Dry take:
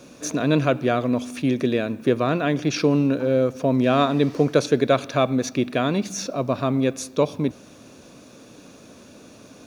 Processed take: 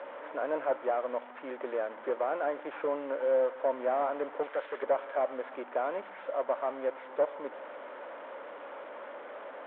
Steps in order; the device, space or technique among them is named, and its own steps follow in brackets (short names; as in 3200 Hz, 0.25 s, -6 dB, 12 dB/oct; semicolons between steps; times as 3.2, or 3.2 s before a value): digital answering machine (BPF 340–3300 Hz; delta modulation 16 kbps, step -31 dBFS; speaker cabinet 490–3200 Hz, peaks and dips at 560 Hz +9 dB, 910 Hz +8 dB, 1400 Hz +3 dB, 2600 Hz -10 dB); 4.43–4.83 tilt shelf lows -7.5 dB, about 1300 Hz; gain -8.5 dB